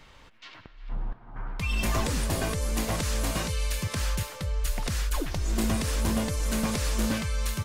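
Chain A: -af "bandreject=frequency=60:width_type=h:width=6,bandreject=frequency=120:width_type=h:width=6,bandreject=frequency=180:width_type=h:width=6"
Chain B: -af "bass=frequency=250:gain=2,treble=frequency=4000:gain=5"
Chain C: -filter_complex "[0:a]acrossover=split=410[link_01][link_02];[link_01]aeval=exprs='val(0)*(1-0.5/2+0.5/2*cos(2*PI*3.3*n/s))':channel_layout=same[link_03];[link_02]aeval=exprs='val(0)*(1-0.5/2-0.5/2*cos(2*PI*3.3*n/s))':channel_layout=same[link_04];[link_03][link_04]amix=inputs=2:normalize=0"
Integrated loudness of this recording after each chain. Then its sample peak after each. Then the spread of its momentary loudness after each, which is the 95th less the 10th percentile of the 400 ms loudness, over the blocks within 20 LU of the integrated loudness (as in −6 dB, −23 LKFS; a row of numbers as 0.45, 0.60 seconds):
−29.5, −27.0, −31.5 LKFS; −17.5, −15.0, −17.0 dBFS; 13, 13, 13 LU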